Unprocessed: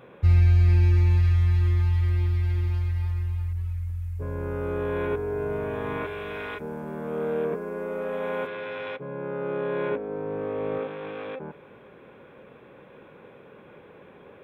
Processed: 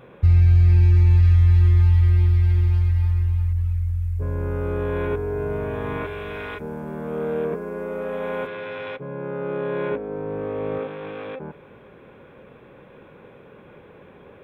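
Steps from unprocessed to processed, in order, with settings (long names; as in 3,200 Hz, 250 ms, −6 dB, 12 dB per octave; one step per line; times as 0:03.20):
low-shelf EQ 100 Hz +9.5 dB
brickwall limiter −10.5 dBFS, peak gain reduction 5 dB
level +1.5 dB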